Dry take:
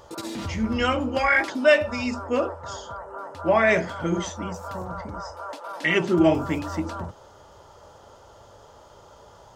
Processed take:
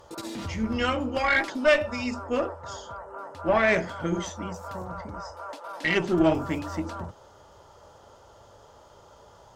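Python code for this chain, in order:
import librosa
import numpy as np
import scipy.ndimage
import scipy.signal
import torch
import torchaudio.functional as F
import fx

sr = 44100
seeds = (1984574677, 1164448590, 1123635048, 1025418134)

y = fx.tube_stage(x, sr, drive_db=10.0, bias=0.6)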